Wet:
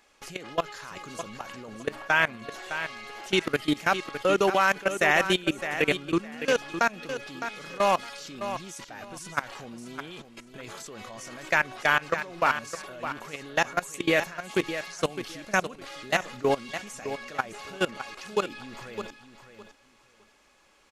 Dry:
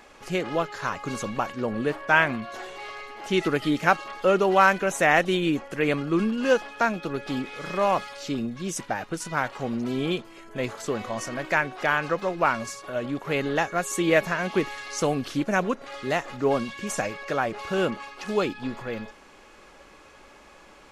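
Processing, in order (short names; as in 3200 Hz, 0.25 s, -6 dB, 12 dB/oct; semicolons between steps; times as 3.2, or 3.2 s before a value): high shelf 2100 Hz +9.5 dB; level quantiser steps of 21 dB; on a send: feedback echo 0.61 s, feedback 20%, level -10 dB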